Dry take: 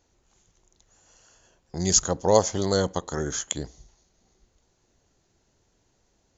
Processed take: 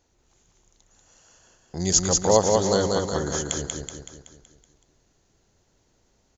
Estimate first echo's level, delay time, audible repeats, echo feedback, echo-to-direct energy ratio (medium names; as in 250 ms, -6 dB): -3.0 dB, 188 ms, 6, 51%, -1.5 dB